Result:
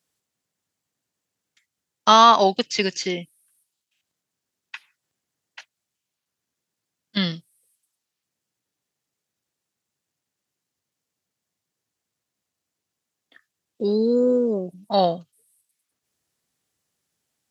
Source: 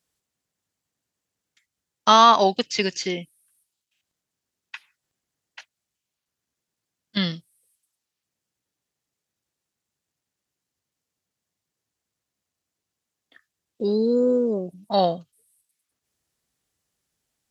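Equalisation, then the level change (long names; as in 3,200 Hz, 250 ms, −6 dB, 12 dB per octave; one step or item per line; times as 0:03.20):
high-pass filter 89 Hz
+1.0 dB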